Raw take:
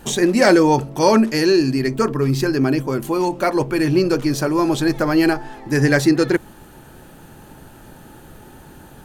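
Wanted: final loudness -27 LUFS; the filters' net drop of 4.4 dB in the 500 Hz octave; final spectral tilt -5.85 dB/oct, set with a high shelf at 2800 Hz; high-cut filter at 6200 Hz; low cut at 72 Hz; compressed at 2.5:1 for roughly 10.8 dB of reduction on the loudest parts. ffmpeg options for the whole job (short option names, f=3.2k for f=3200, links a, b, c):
-af "highpass=72,lowpass=6.2k,equalizer=f=500:t=o:g=-6,highshelf=f=2.8k:g=-7.5,acompressor=threshold=-29dB:ratio=2.5,volume=2dB"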